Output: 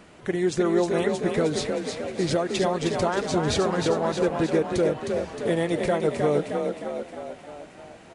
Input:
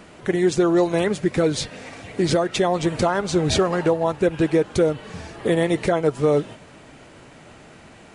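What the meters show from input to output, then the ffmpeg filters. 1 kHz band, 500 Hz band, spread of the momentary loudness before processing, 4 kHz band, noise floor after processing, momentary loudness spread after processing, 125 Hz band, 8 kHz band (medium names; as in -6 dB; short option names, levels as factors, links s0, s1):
-2.5 dB, -3.0 dB, 9 LU, -3.5 dB, -48 dBFS, 11 LU, -4.5 dB, -3.5 dB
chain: -filter_complex "[0:a]asplit=9[s0][s1][s2][s3][s4][s5][s6][s7][s8];[s1]adelay=311,afreqshift=35,volume=0.562[s9];[s2]adelay=622,afreqshift=70,volume=0.327[s10];[s3]adelay=933,afreqshift=105,volume=0.188[s11];[s4]adelay=1244,afreqshift=140,volume=0.11[s12];[s5]adelay=1555,afreqshift=175,volume=0.0638[s13];[s6]adelay=1866,afreqshift=210,volume=0.0367[s14];[s7]adelay=2177,afreqshift=245,volume=0.0214[s15];[s8]adelay=2488,afreqshift=280,volume=0.0124[s16];[s0][s9][s10][s11][s12][s13][s14][s15][s16]amix=inputs=9:normalize=0,volume=0.562"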